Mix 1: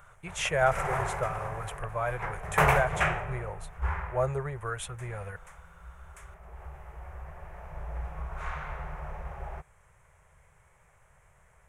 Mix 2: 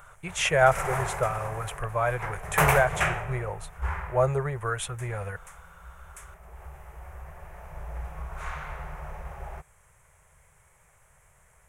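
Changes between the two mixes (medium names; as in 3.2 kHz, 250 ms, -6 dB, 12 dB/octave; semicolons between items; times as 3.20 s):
speech +5.0 dB; background: remove low-pass 3.2 kHz 6 dB/octave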